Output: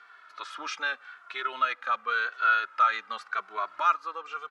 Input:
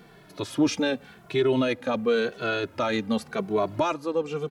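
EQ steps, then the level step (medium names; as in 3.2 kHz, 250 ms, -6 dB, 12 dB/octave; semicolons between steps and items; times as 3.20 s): resonant high-pass 1.3 kHz, resonance Q 6.1; distance through air 87 m; -3.5 dB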